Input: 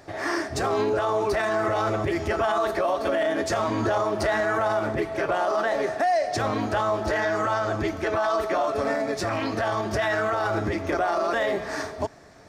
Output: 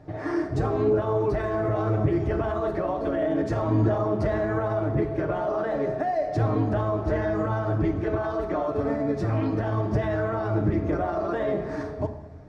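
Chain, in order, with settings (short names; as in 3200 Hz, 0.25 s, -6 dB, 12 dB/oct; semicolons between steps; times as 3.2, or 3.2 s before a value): HPF 50 Hz; tilt -4.5 dB/oct; reverb RT60 0.95 s, pre-delay 6 ms, DRR 3 dB; gain -7 dB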